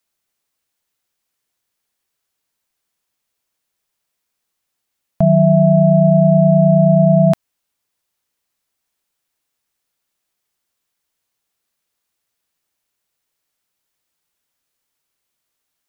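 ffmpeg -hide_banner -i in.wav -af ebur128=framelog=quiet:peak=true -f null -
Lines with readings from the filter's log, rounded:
Integrated loudness:
  I:         -12.0 LUFS
  Threshold: -21.9 LUFS
Loudness range:
  LRA:         9.6 LU
  Threshold: -35.0 LUFS
  LRA low:   -22.3 LUFS
  LRA high:  -12.7 LUFS
True peak:
  Peak:       -2.6 dBFS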